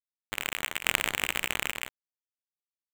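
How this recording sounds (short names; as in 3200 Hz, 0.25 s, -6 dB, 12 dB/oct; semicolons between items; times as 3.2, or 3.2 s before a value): aliases and images of a low sample rate 5200 Hz, jitter 0%; random-step tremolo 3.5 Hz; a quantiser's noise floor 8-bit, dither none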